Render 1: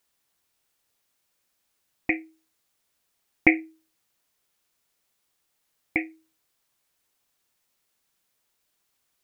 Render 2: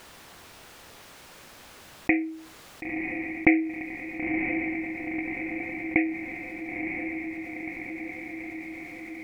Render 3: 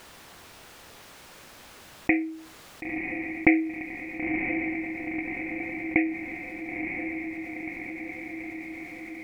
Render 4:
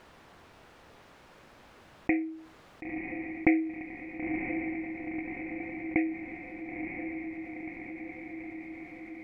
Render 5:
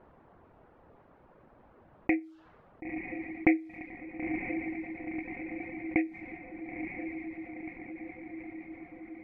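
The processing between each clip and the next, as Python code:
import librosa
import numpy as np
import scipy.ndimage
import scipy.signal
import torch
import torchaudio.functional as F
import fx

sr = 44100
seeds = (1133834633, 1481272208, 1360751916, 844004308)

y1 = fx.lowpass(x, sr, hz=1900.0, slope=6)
y1 = fx.echo_diffused(y1, sr, ms=988, feedback_pct=48, wet_db=-15)
y1 = fx.env_flatten(y1, sr, amount_pct=50)
y2 = y1 + 10.0 ** (-18.5 / 20.0) * np.pad(y1, (int(888 * sr / 1000.0), 0))[:len(y1)]
y3 = fx.lowpass(y2, sr, hz=1500.0, slope=6)
y3 = F.gain(torch.from_numpy(y3), -3.0).numpy()
y4 = fx.dereverb_blind(y3, sr, rt60_s=0.53)
y4 = fx.env_lowpass(y4, sr, base_hz=830.0, full_db=-30.0)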